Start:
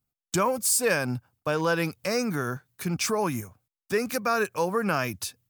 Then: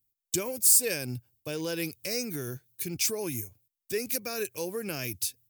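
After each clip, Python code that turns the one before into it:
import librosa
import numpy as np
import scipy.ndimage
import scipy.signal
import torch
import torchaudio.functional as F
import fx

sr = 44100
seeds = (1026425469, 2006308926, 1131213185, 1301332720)

y = fx.curve_eq(x, sr, hz=(120.0, 190.0, 350.0, 1200.0, 2200.0, 9500.0, 16000.0), db=(0, -8, 1, -18, -1, 7, 13))
y = F.gain(torch.from_numpy(y), -3.5).numpy()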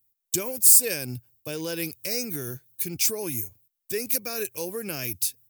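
y = fx.high_shelf(x, sr, hz=9700.0, db=7.5)
y = F.gain(torch.from_numpy(y), 1.0).numpy()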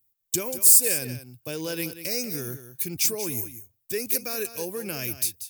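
y = x + 10.0 ** (-12.0 / 20.0) * np.pad(x, (int(187 * sr / 1000.0), 0))[:len(x)]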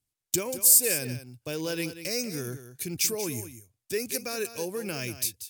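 y = np.repeat(scipy.signal.resample_poly(x, 1, 2), 2)[:len(x)]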